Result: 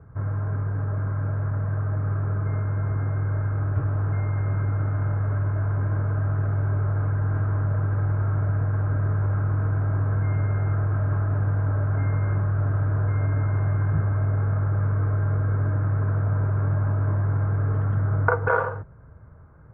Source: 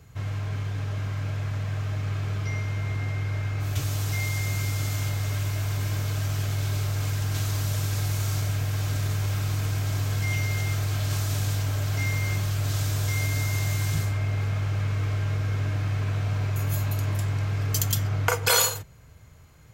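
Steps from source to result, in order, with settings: elliptic low-pass 1500 Hz, stop band 80 dB; notch 740 Hz, Q 13; gain +4.5 dB

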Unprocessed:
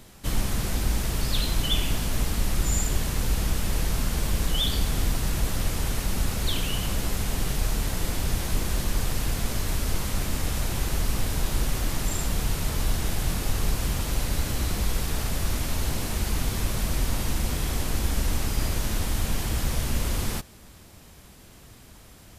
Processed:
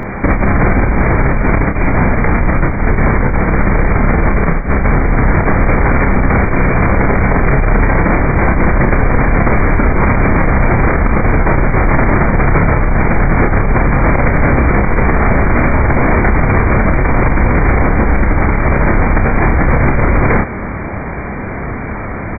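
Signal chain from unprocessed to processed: low shelf 140 Hz -7 dB; negative-ratio compressor -32 dBFS, ratio -0.5; brick-wall FIR low-pass 2400 Hz; doubler 30 ms -6 dB; maximiser +28.5 dB; gain -1 dB

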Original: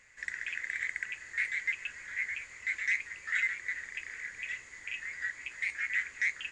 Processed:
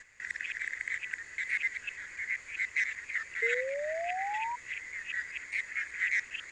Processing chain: local time reversal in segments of 0.197 s; delay with a stepping band-pass 0.635 s, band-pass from 350 Hz, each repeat 0.7 oct, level -5 dB; painted sound rise, 3.42–4.56, 450–980 Hz -35 dBFS

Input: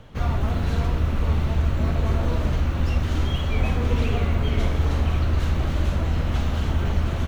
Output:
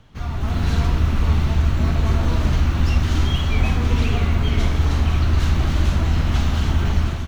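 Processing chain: bell 5300 Hz +4 dB 1.1 oct; AGC gain up to 11.5 dB; bell 520 Hz -7.5 dB 0.57 oct; gain -4.5 dB

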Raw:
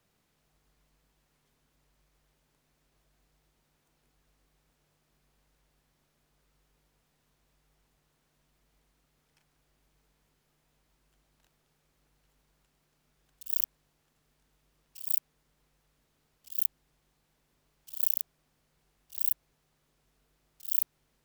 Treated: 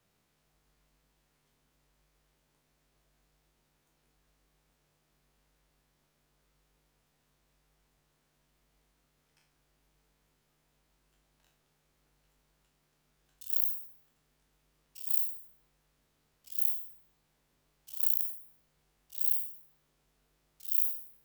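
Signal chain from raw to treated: spectral trails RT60 0.55 s; gain -2.5 dB

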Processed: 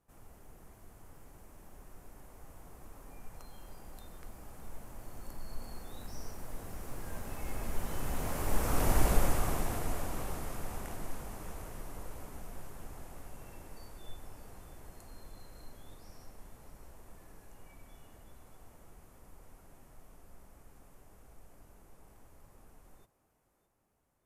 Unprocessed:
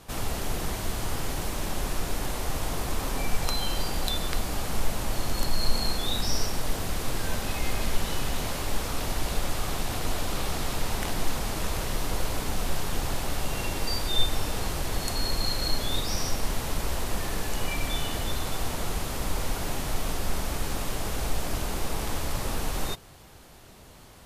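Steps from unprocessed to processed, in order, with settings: Doppler pass-by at 9, 8 m/s, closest 2.9 m; bell 3900 Hz -13 dB 1.3 oct; thinning echo 0.612 s, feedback 59%, high-pass 180 Hz, level -15 dB; gain +3 dB

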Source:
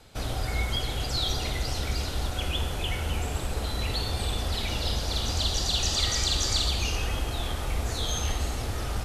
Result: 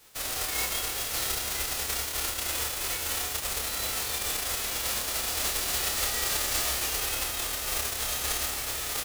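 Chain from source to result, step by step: spectral whitening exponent 0.1; doubler 29 ms -4 dB; gain -4.5 dB

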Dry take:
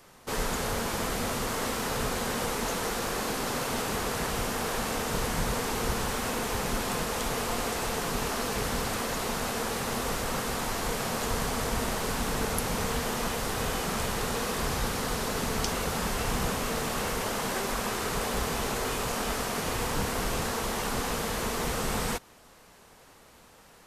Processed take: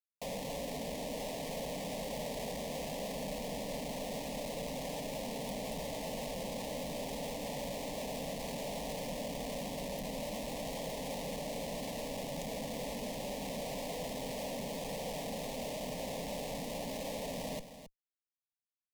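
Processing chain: HPF 200 Hz 24 dB/oct; high shelf 5600 Hz +2 dB; compressor 4:1, threshold -39 dBFS, peak gain reduction 12.5 dB; Schmitt trigger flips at -36.5 dBFS; varispeed +26%; Butterworth band-stop 1500 Hz, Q 3.3; fixed phaser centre 340 Hz, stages 6; echo 0.269 s -11.5 dB; gain +4 dB

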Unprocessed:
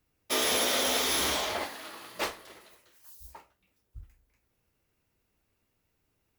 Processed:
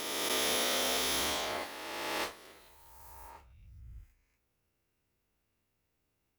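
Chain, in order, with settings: spectral swells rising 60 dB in 2.33 s; gain -7.5 dB

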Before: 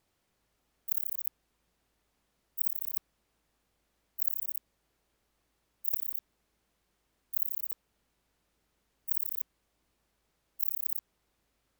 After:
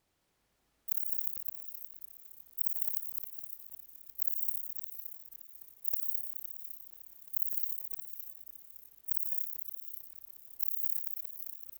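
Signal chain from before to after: loudspeakers at several distances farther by 35 m -9 dB, 72 m -4 dB; warbling echo 0.565 s, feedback 54%, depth 197 cents, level -7 dB; gain -1.5 dB

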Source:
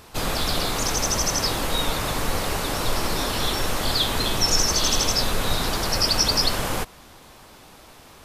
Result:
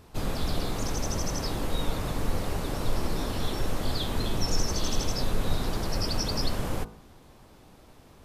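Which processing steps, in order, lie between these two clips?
tilt shelf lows +6 dB, about 640 Hz; de-hum 54.78 Hz, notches 28; gain -6.5 dB

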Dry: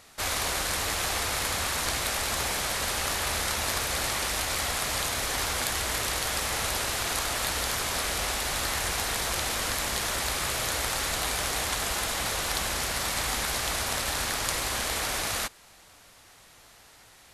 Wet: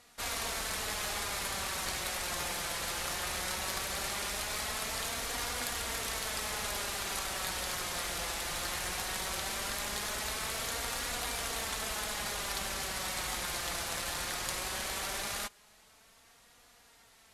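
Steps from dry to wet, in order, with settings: flange 0.18 Hz, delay 4.1 ms, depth 1.8 ms, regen +39%; added harmonics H 4 -24 dB, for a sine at -14 dBFS; gain -3 dB

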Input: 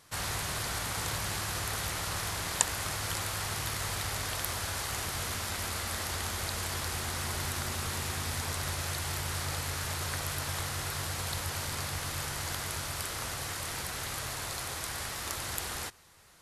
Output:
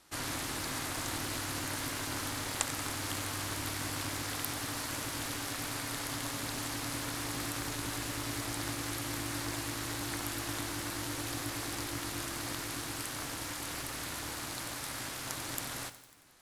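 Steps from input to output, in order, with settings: ring modulator 200 Hz; lo-fi delay 91 ms, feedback 80%, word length 8-bit, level -13 dB

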